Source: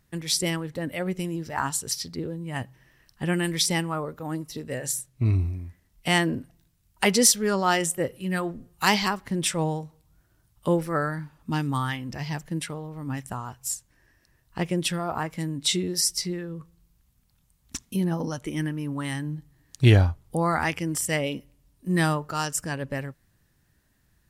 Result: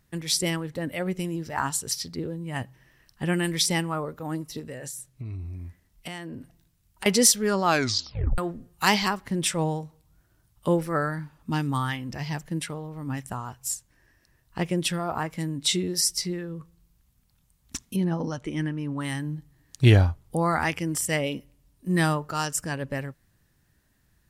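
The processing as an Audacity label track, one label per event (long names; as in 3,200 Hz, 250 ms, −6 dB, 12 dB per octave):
4.590000	7.060000	downward compressor 8 to 1, threshold −33 dBFS
7.650000	7.650000	tape stop 0.73 s
17.960000	19.010000	high-frequency loss of the air 71 metres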